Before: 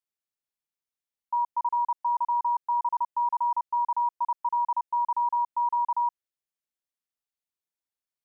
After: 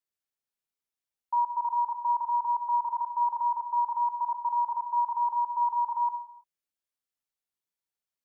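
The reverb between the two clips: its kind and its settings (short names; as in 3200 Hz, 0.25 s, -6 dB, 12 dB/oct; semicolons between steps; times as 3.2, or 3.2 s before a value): non-linear reverb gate 0.36 s falling, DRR 7.5 dB; gain -1.5 dB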